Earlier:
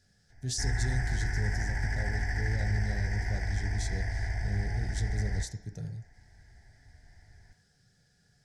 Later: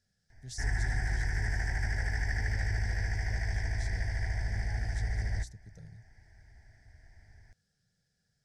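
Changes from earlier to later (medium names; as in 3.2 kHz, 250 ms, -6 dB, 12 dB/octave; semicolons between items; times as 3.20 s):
speech -11.0 dB; reverb: off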